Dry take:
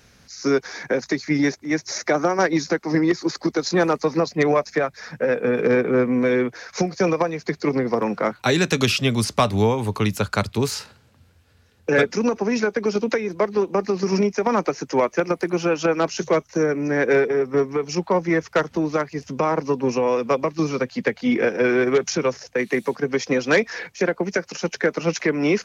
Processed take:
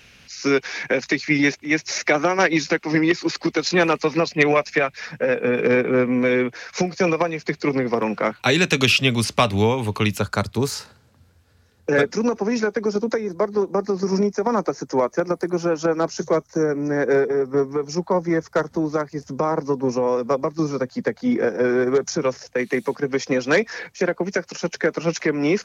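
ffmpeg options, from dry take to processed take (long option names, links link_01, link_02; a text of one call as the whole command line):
ffmpeg -i in.wav -af "asetnsamples=nb_out_samples=441:pad=0,asendcmd='5.06 equalizer g 7;10.2 equalizer g -4.5;12.83 equalizer g -13.5;22.22 equalizer g -2',equalizer=frequency=2700:width_type=o:width=0.79:gain=14" out.wav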